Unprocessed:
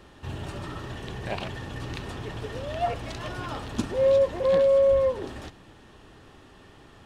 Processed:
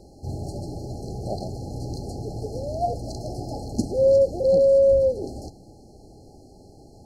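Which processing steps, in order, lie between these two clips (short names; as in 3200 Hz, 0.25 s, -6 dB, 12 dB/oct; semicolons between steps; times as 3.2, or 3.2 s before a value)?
FFT band-reject 860–4100 Hz; dynamic EQ 1000 Hz, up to -6 dB, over -42 dBFS, Q 1.9; gain +4 dB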